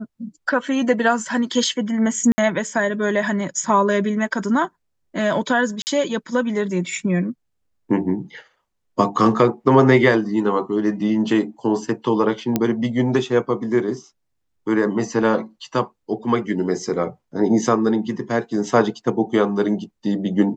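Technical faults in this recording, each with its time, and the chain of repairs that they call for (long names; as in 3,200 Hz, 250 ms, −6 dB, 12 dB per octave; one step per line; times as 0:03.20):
0:02.32–0:02.38: drop-out 60 ms
0:05.82–0:05.87: drop-out 49 ms
0:12.56: click −5 dBFS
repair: click removal
repair the gap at 0:02.32, 60 ms
repair the gap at 0:05.82, 49 ms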